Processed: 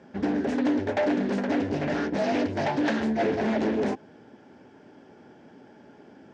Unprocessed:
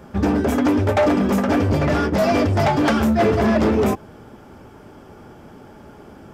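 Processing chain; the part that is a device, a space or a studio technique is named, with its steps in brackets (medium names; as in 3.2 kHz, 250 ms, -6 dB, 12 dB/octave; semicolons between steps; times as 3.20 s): full-range speaker at full volume (loudspeaker Doppler distortion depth 0.45 ms; cabinet simulation 170–6500 Hz, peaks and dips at 270 Hz +4 dB, 1.2 kHz -10 dB, 1.7 kHz +5 dB); trim -8 dB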